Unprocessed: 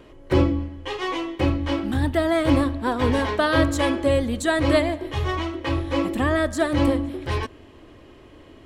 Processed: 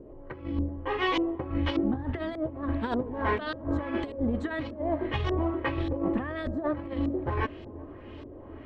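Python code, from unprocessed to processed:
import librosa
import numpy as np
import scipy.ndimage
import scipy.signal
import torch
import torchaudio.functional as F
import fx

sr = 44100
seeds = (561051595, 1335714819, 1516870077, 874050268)

y = fx.over_compress(x, sr, threshold_db=-25.0, ratio=-0.5)
y = fx.filter_lfo_lowpass(y, sr, shape='saw_up', hz=1.7, low_hz=400.0, high_hz=4700.0, q=1.4)
y = fx.echo_wet_lowpass(y, sr, ms=383, feedback_pct=76, hz=680.0, wet_db=-17)
y = y * 10.0 ** (-4.5 / 20.0)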